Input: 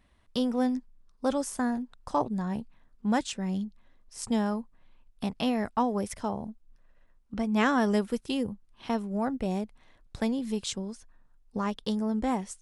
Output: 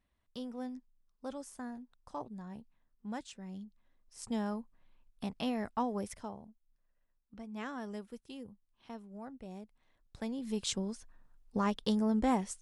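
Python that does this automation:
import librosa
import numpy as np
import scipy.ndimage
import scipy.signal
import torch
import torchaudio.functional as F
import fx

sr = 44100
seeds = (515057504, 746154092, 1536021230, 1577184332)

y = fx.gain(x, sr, db=fx.line((3.5, -14.5), (4.5, -7.0), (6.09, -7.0), (6.49, -17.0), (9.46, -17.0), (10.3, -10.0), (10.71, -1.0)))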